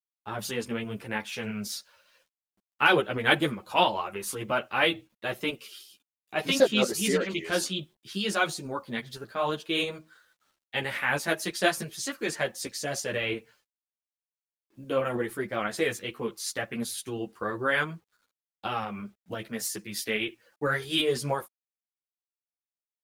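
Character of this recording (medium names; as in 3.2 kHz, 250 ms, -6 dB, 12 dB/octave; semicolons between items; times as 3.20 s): tremolo saw up 6 Hz, depth 35%; a quantiser's noise floor 12-bit, dither none; a shimmering, thickened sound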